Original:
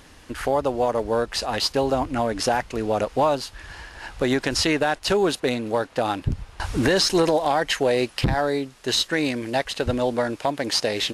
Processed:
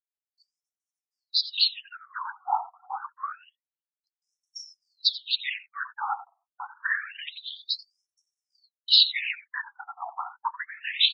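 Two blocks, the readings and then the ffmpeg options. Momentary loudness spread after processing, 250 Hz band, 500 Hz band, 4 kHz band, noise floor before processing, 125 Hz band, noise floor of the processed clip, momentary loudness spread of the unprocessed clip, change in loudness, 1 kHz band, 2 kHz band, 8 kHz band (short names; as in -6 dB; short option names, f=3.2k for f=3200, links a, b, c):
20 LU, under -40 dB, under -35 dB, +1.5 dB, -49 dBFS, under -40 dB, under -85 dBFS, 8 LU, -4.0 dB, -8.0 dB, -4.5 dB, under -25 dB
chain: -filter_complex "[0:a]highshelf=f=5.3k:t=q:w=3:g=-8.5,afftdn=nr=33:nf=-31,highpass=f=100:p=1,aecho=1:1:7.5:0.41,afftfilt=real='re*(1-between(b*sr/4096,180,690))':imag='im*(1-between(b*sr/4096,180,690))':win_size=4096:overlap=0.75,equalizer=f=750:w=0.47:g=-3,asplit=2[a][b];[b]adelay=87.46,volume=-14dB,highshelf=f=4k:g=-1.97[c];[a][c]amix=inputs=2:normalize=0,afftfilt=real='hypot(re,im)*cos(2*PI*random(0))':imag='hypot(re,im)*sin(2*PI*random(1))':win_size=512:overlap=0.75,agate=range=-40dB:threshold=-43dB:ratio=16:detection=peak,afftfilt=real='re*between(b*sr/1024,960*pow(7700/960,0.5+0.5*sin(2*PI*0.27*pts/sr))/1.41,960*pow(7700/960,0.5+0.5*sin(2*PI*0.27*pts/sr))*1.41)':imag='im*between(b*sr/1024,960*pow(7700/960,0.5+0.5*sin(2*PI*0.27*pts/sr))/1.41,960*pow(7700/960,0.5+0.5*sin(2*PI*0.27*pts/sr))*1.41)':win_size=1024:overlap=0.75,volume=7.5dB"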